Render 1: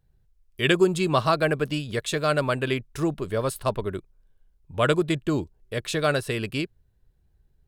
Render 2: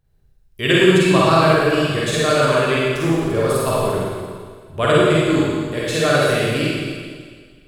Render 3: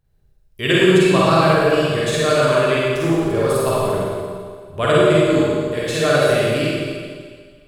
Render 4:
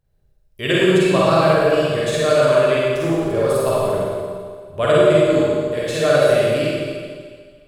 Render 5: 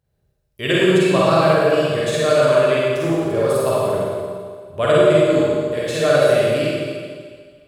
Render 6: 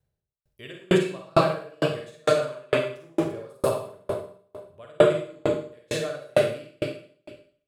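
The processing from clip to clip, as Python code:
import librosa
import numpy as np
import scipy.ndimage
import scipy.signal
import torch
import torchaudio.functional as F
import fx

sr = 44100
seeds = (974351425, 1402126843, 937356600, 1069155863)

y1 = fx.rev_schroeder(x, sr, rt60_s=1.8, comb_ms=38, drr_db=-7.0)
y1 = y1 * 10.0 ** (1.0 / 20.0)
y2 = fx.echo_wet_bandpass(y1, sr, ms=71, feedback_pct=74, hz=460.0, wet_db=-8.0)
y2 = y2 * 10.0 ** (-1.0 / 20.0)
y3 = fx.peak_eq(y2, sr, hz=580.0, db=6.0, octaves=0.46)
y3 = y3 * 10.0 ** (-2.5 / 20.0)
y4 = scipy.signal.sosfilt(scipy.signal.butter(2, 65.0, 'highpass', fs=sr, output='sos'), y3)
y5 = fx.tremolo_decay(y4, sr, direction='decaying', hz=2.2, depth_db=40)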